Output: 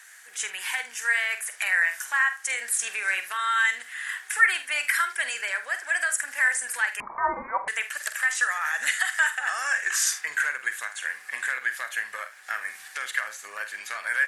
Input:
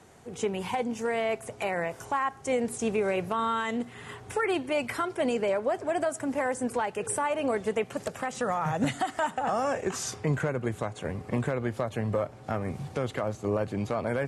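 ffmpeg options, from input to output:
-filter_complex "[0:a]highpass=f=1.7k:t=q:w=6.9,aemphasis=mode=production:type=75fm,aecho=1:1:47|77:0.299|0.133,asettb=1/sr,asplit=3[a][b][c];[a]atrim=end=7.004[d];[b]atrim=start=7:end=7.68,asetpts=PTS-STARTPTS,afade=t=in:d=0.004:c=qsin,afade=t=out:st=0.676:d=0.004:c=qsin,lowpass=f=2.3k:t=q:w=0.5098,lowpass=f=2.3k:t=q:w=0.6013,lowpass=f=2.3k:t=q:w=0.9,lowpass=f=2.3k:t=q:w=2.563,afreqshift=-2700[e];[c]atrim=start=7.676[f];[d][e]acrossfade=d=0.004:c1=hsin:c2=qsin[g];[g][f]acrossfade=d=0.004:c1=qsin:c2=hsin"

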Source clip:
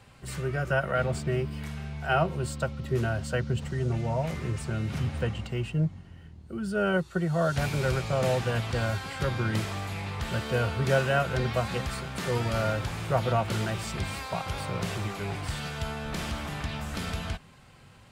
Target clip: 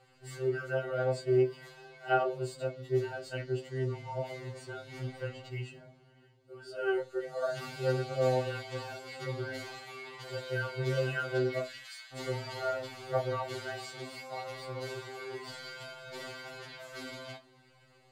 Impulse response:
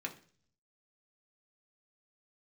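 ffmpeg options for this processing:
-filter_complex "[0:a]asettb=1/sr,asplit=3[a][b][c];[a]atrim=end=11.594[d];[b]atrim=start=11.59:end=12.13,asetpts=PTS-STARTPTS,afade=t=in:d=0.004:c=qsin,afade=t=out:st=0.536:d=0.004:c=qsin,highpass=f=1.4k:w=0.5412,highpass=f=1.4k:w=1.3066[e];[c]atrim=start=12.126[f];[d][e]acrossfade=d=0.004:c1=hsin:c2=qsin[g];[g][f]acrossfade=d=0.004:c1=qsin:c2=hsin,aphaser=in_gain=1:out_gain=1:delay=3.5:decay=0.22:speed=0.74:type=triangular[h];[1:a]atrim=start_sample=2205,asetrate=83790,aresample=44100[i];[h][i]afir=irnorm=-1:irlink=0,afftfilt=real='re*2.45*eq(mod(b,6),0)':imag='im*2.45*eq(mod(b,6),0)':win_size=2048:overlap=0.75"

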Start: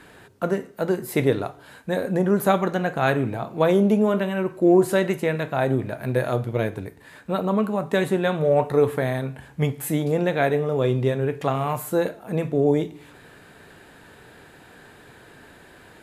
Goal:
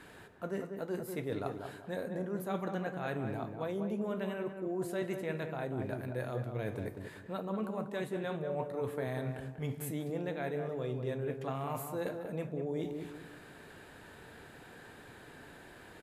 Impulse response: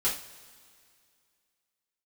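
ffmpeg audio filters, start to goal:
-filter_complex "[0:a]areverse,acompressor=threshold=-29dB:ratio=6,areverse,asplit=2[a][b];[b]adelay=191,lowpass=f=1.4k:p=1,volume=-5.5dB,asplit=2[c][d];[d]adelay=191,lowpass=f=1.4k:p=1,volume=0.36,asplit=2[e][f];[f]adelay=191,lowpass=f=1.4k:p=1,volume=0.36,asplit=2[g][h];[h]adelay=191,lowpass=f=1.4k:p=1,volume=0.36[i];[a][c][e][g][i]amix=inputs=5:normalize=0,volume=-5.5dB"

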